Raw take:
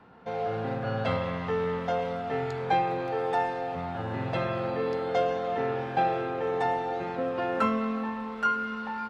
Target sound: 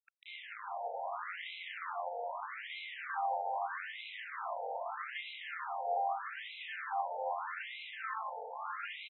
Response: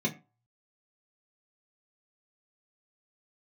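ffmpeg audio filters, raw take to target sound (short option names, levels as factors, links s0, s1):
-af "equalizer=f=260:w=1.8:g=7.5,bandreject=f=870:w=12,aecho=1:1:1:0.72,alimiter=limit=0.0668:level=0:latency=1:release=189,acrusher=bits=4:dc=4:mix=0:aa=0.000001,aecho=1:1:400|700|925|1094|1220:0.631|0.398|0.251|0.158|0.1,afftfilt=real='re*between(b*sr/1024,640*pow(2900/640,0.5+0.5*sin(2*PI*0.8*pts/sr))/1.41,640*pow(2900/640,0.5+0.5*sin(2*PI*0.8*pts/sr))*1.41)':imag='im*between(b*sr/1024,640*pow(2900/640,0.5+0.5*sin(2*PI*0.8*pts/sr))/1.41,640*pow(2900/640,0.5+0.5*sin(2*PI*0.8*pts/sr))*1.41)':win_size=1024:overlap=0.75,volume=1.33"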